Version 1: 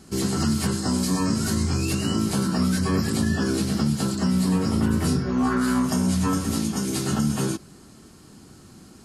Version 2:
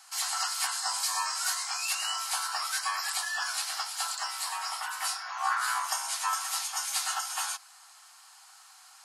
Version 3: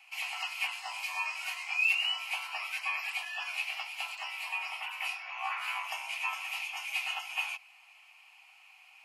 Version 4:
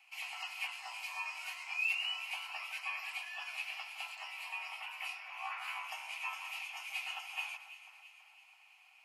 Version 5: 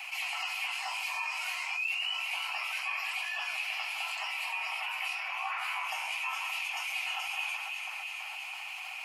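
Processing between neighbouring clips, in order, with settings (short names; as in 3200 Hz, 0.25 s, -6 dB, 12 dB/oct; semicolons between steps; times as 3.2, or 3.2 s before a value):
steep high-pass 740 Hz 72 dB/oct; gain +1 dB
EQ curve 450 Hz 0 dB, 950 Hz -6 dB, 1600 Hz -15 dB, 2500 Hz +15 dB, 3700 Hz -12 dB, 8700 Hz -21 dB, 14000 Hz -9 dB
echo with dull and thin repeats by turns 0.165 s, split 2000 Hz, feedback 74%, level -10.5 dB; gain -6.5 dB
flange 0.9 Hz, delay 1 ms, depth 10 ms, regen -46%; fast leveller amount 70%; gain +3.5 dB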